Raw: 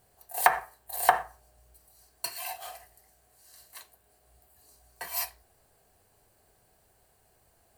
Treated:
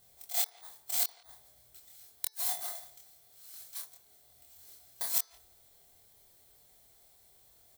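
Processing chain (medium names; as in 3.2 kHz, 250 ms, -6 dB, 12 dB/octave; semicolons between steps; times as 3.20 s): bit-reversed sample order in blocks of 16 samples; treble shelf 3.8 kHz +11.5 dB; inverted gate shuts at -10 dBFS, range -40 dB; doubling 25 ms -2.5 dB; de-hum 437.1 Hz, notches 14; speakerphone echo 170 ms, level -19 dB; trim -6 dB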